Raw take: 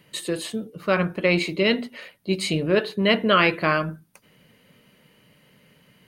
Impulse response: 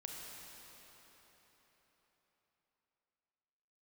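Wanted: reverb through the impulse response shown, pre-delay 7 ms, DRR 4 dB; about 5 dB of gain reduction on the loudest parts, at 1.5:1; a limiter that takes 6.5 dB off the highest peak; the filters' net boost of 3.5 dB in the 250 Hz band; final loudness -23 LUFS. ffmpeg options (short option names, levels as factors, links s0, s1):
-filter_complex "[0:a]equalizer=f=250:t=o:g=5,acompressor=threshold=0.0447:ratio=1.5,alimiter=limit=0.133:level=0:latency=1,asplit=2[s0][s1];[1:a]atrim=start_sample=2205,adelay=7[s2];[s1][s2]afir=irnorm=-1:irlink=0,volume=0.794[s3];[s0][s3]amix=inputs=2:normalize=0,volume=1.78"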